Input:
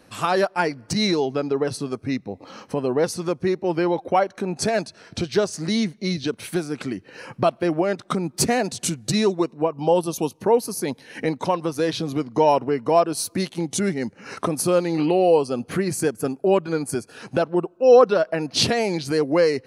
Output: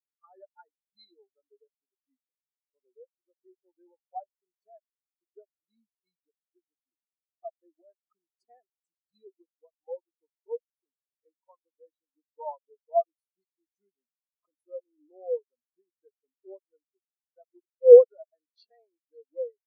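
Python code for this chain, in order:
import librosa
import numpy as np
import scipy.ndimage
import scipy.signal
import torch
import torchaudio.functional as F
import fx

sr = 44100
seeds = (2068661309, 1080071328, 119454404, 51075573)

y = fx.highpass(x, sr, hz=900.0, slope=6)
y = fx.spectral_expand(y, sr, expansion=4.0)
y = y * 10.0 ** (4.5 / 20.0)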